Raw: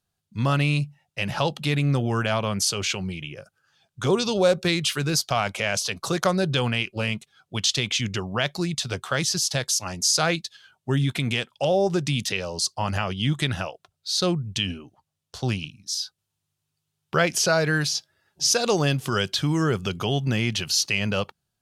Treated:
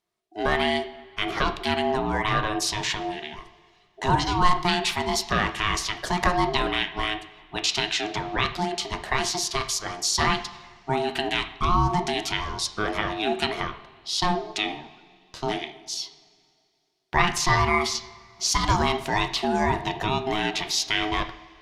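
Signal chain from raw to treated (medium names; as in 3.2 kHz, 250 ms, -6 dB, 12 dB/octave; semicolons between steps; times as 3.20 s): high-pass 220 Hz 6 dB/octave; treble shelf 5.7 kHz -9 dB; band-stop 800 Hz, Q 12; ring modulator 530 Hz; reverberation, pre-delay 3 ms, DRR 6.5 dB; trim +4 dB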